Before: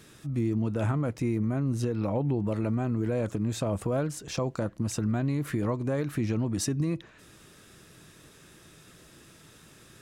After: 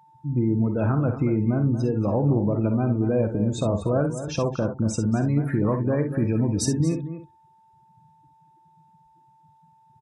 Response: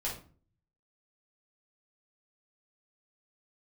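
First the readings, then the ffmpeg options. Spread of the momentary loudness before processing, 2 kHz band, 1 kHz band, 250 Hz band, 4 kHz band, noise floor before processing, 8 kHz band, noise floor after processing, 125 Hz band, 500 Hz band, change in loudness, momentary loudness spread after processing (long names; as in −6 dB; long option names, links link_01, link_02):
4 LU, +2.0 dB, +5.0 dB, +6.0 dB, +2.5 dB, −55 dBFS, +3.5 dB, −58 dBFS, +6.0 dB, +6.0 dB, +6.0 dB, 4 LU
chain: -filter_complex "[0:a]afftdn=noise_reduction=34:noise_floor=-38,asplit=2[link_01][link_02];[link_02]aecho=0:1:49|63:0.282|0.282[link_03];[link_01][link_03]amix=inputs=2:normalize=0,aeval=exprs='val(0)+0.00126*sin(2*PI*890*n/s)':channel_layout=same,asplit=2[link_04][link_05];[link_05]adelay=233.2,volume=-11dB,highshelf=frequency=4000:gain=-5.25[link_06];[link_04][link_06]amix=inputs=2:normalize=0,volume=5dB"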